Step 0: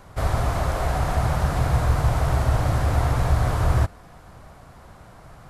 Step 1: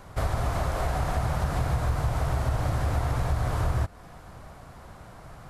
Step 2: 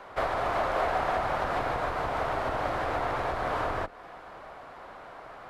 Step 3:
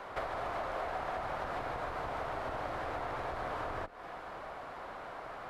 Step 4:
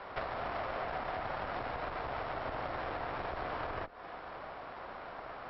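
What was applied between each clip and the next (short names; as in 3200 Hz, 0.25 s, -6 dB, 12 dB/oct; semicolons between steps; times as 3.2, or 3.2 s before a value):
compressor 3:1, threshold -24 dBFS, peak gain reduction 8 dB
octaver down 2 oct, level -1 dB; three-band isolator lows -22 dB, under 330 Hz, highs -18 dB, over 3800 Hz; gain +5 dB
compressor 3:1, threshold -39 dBFS, peak gain reduction 11.5 dB; gain +1 dB
tube stage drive 32 dB, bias 0.8; brick-wall FIR low-pass 5600 Hz; gain +4 dB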